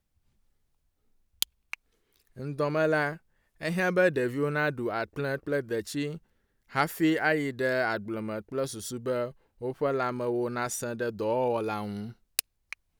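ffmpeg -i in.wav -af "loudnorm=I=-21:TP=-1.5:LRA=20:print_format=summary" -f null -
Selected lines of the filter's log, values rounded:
Input Integrated:    -30.1 LUFS
Input True Peak:      -7.9 dBTP
Input LRA:             2.7 LU
Input Threshold:     -40.5 LUFS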